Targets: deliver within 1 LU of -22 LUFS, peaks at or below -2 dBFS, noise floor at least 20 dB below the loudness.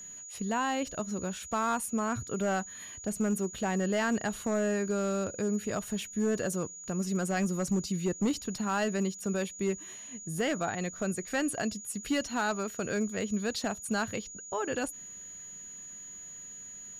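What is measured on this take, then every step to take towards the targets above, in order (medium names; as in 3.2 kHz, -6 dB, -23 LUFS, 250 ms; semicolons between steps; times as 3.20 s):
clipped samples 0.9%; clipping level -22.5 dBFS; steady tone 6.8 kHz; tone level -43 dBFS; loudness -32.0 LUFS; peak level -22.5 dBFS; loudness target -22.0 LUFS
-> clip repair -22.5 dBFS; band-stop 6.8 kHz, Q 30; trim +10 dB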